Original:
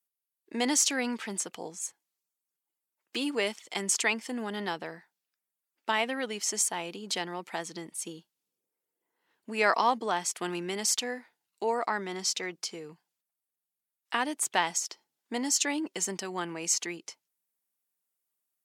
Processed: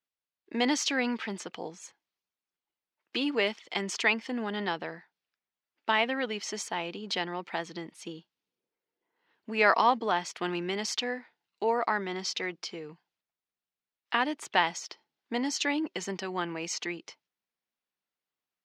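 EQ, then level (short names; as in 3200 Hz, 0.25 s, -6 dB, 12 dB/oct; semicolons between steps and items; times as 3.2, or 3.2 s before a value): air absorption 260 m; high shelf 2900 Hz +9.5 dB; +2.0 dB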